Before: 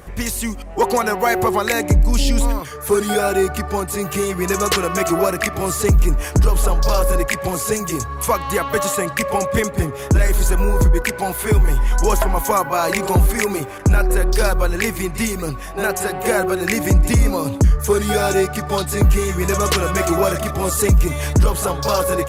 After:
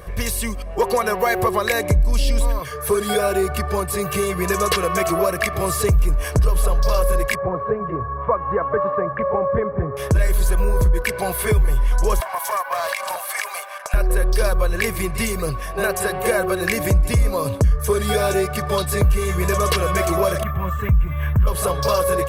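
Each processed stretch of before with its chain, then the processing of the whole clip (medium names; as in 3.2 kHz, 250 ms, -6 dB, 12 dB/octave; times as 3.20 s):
7.35–9.97 s: low-pass 1.4 kHz 24 dB/octave + bass shelf 66 Hz -11.5 dB
12.20–13.94 s: steep high-pass 610 Hz 48 dB/octave + compression 5:1, threshold -20 dBFS + loudspeaker Doppler distortion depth 0.13 ms
20.43–21.47 s: FFT filter 180 Hz 0 dB, 450 Hz -15 dB, 1.4 kHz 0 dB, 3.3 kHz -10 dB, 4.7 kHz -30 dB, 13 kHz +2 dB + careless resampling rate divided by 3×, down filtered, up hold
whole clip: peaking EQ 7 kHz -8 dB 0.26 oct; comb 1.8 ms, depth 54%; compression 2:1, threshold -17 dBFS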